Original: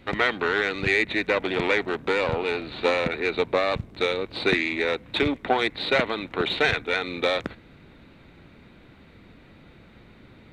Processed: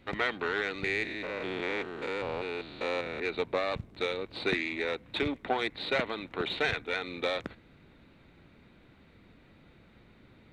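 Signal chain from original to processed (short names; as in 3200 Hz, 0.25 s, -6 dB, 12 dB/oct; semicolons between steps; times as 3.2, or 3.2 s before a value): 0.84–3.2 stepped spectrum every 0.2 s; gain -7.5 dB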